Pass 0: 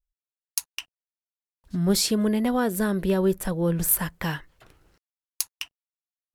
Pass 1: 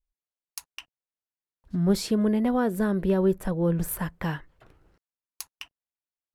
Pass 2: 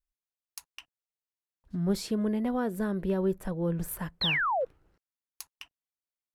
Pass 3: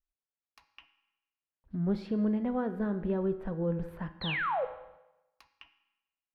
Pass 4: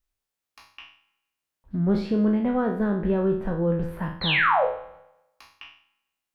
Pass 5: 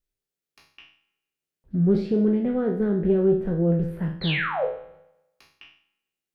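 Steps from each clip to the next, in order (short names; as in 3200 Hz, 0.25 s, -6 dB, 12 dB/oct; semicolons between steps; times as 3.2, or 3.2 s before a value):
high shelf 2500 Hz -12 dB
painted sound fall, 4.21–4.65, 470–4400 Hz -22 dBFS; gain -5.5 dB
air absorption 370 m; reverb RT60 0.95 s, pre-delay 4 ms, DRR 9.5 dB; gain -1.5 dB
spectral trails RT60 0.51 s; gain +7 dB
fifteen-band EQ 160 Hz +8 dB, 400 Hz +9 dB, 1000 Hz -9 dB; Doppler distortion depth 0.14 ms; gain -4 dB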